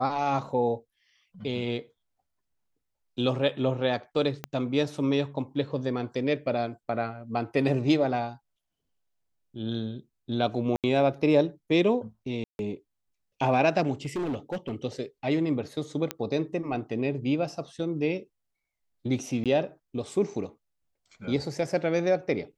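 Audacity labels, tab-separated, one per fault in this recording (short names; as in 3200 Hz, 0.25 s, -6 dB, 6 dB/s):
4.440000	4.440000	pop -17 dBFS
10.760000	10.840000	gap 77 ms
12.440000	12.590000	gap 0.151 s
14.050000	14.740000	clipped -26.5 dBFS
16.110000	16.110000	pop -13 dBFS
19.440000	19.460000	gap 17 ms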